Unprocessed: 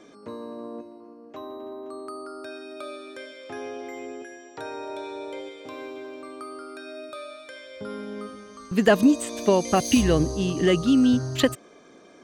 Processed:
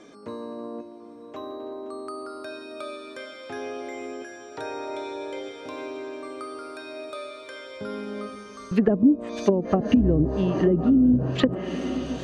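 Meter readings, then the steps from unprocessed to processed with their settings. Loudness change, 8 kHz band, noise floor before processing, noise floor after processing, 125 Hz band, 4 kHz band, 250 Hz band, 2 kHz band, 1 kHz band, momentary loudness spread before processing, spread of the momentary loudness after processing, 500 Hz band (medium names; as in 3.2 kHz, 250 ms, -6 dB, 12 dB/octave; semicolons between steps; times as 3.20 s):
-2.5 dB, -13.5 dB, -51 dBFS, -43 dBFS, +2.0 dB, -6.0 dB, +1.0 dB, -5.5 dB, -3.5 dB, 20 LU, 19 LU, -1.0 dB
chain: echo that smears into a reverb 1030 ms, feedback 58%, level -12 dB; low-pass that closes with the level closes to 360 Hz, closed at -15 dBFS; trim +1.5 dB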